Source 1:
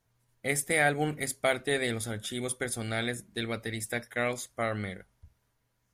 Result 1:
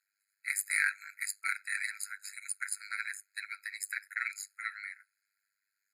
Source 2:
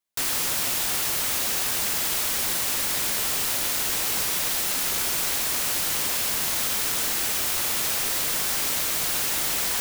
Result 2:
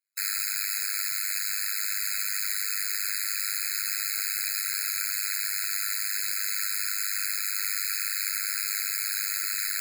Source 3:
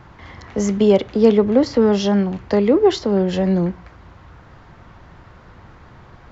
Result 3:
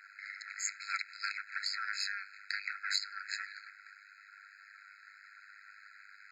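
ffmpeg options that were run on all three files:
-af "aeval=exprs='(tanh(3.16*val(0)+0.45)-tanh(0.45))/3.16':channel_layout=same,tremolo=f=100:d=0.947,afftfilt=real='re*eq(mod(floor(b*sr/1024/1300),2),1)':imag='im*eq(mod(floor(b*sr/1024/1300),2),1)':win_size=1024:overlap=0.75,volume=5dB"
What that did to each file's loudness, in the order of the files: −4.5, −4.0, −20.5 LU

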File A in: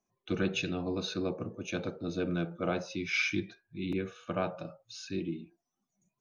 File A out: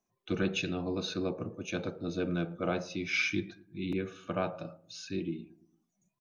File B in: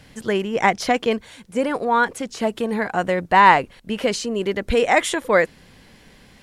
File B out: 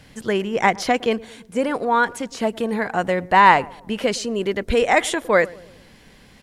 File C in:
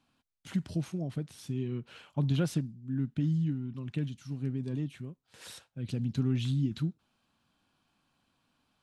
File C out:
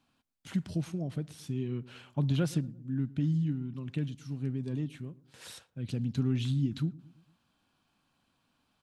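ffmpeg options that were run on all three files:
-filter_complex "[0:a]asplit=2[link_01][link_02];[link_02]adelay=113,lowpass=frequency=940:poles=1,volume=-20dB,asplit=2[link_03][link_04];[link_04]adelay=113,lowpass=frequency=940:poles=1,volume=0.54,asplit=2[link_05][link_06];[link_06]adelay=113,lowpass=frequency=940:poles=1,volume=0.54,asplit=2[link_07][link_08];[link_08]adelay=113,lowpass=frequency=940:poles=1,volume=0.54[link_09];[link_01][link_03][link_05][link_07][link_09]amix=inputs=5:normalize=0"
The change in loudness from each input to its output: 0.0, 0.0, 0.0 LU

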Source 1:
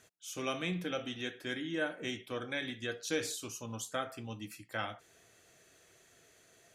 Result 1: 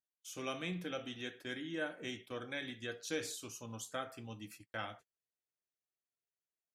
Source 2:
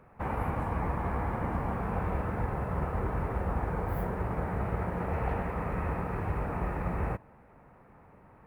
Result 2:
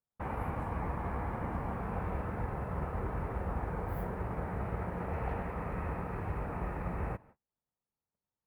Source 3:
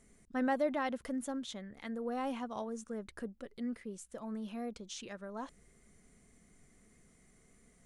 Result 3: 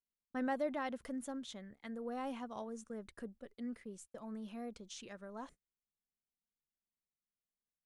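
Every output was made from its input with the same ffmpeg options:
-af "agate=range=-37dB:threshold=-50dB:ratio=16:detection=peak,volume=-4.5dB"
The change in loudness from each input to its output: −4.5, −4.5, −4.5 LU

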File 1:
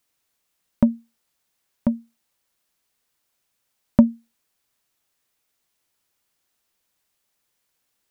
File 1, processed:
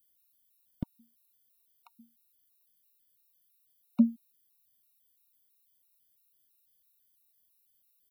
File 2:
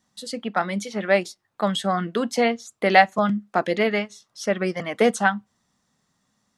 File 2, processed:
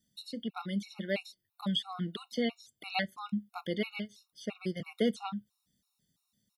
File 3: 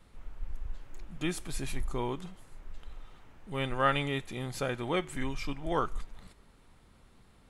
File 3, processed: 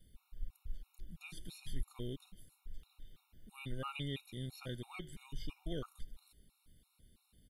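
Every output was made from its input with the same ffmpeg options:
-filter_complex "[0:a]acrossover=split=5100[link_01][link_02];[link_02]acompressor=threshold=-58dB:ratio=4:attack=1:release=60[link_03];[link_01][link_03]amix=inputs=2:normalize=0,firequalizer=gain_entry='entry(120,0);entry(750,-15);entry(1100,-13);entry(1700,-12);entry(3400,2);entry(6700,-4);entry(12000,13)':delay=0.05:min_phase=1,afftfilt=real='re*gt(sin(2*PI*3*pts/sr)*(1-2*mod(floor(b*sr/1024/730),2)),0)':imag='im*gt(sin(2*PI*3*pts/sr)*(1-2*mod(floor(b*sr/1024/730),2)),0)':win_size=1024:overlap=0.75,volume=-3.5dB"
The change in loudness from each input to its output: −9.0, −13.5, −12.5 LU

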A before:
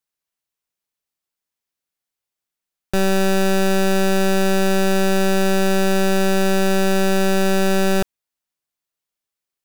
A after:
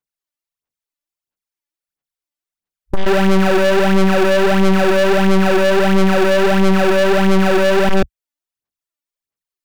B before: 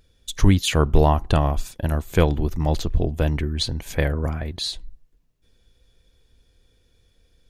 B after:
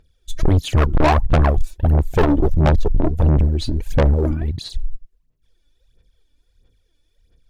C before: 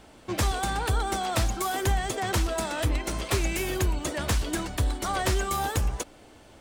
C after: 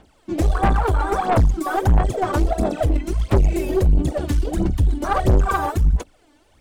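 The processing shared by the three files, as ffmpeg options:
-af "afwtdn=0.0631,aphaser=in_gain=1:out_gain=1:delay=3.5:decay=0.72:speed=1.5:type=sinusoidal,aeval=exprs='(tanh(10*val(0)+0.3)-tanh(0.3))/10':channel_layout=same,volume=9dB"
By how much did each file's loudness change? +4.5, +4.0, +7.5 LU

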